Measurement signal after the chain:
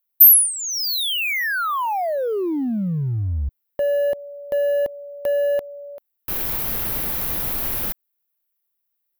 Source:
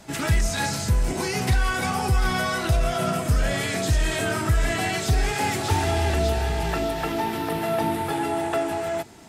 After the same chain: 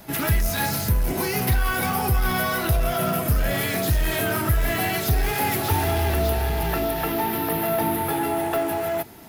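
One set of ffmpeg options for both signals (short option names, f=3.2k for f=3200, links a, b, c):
-filter_complex "[0:a]highshelf=f=7.9k:g=-10.5,asplit=2[a][b];[b]aeval=exprs='0.0596*(abs(mod(val(0)/0.0596+3,4)-2)-1)':c=same,volume=-11dB[c];[a][c]amix=inputs=2:normalize=0,aexciter=amount=14.8:drive=6.2:freq=11k"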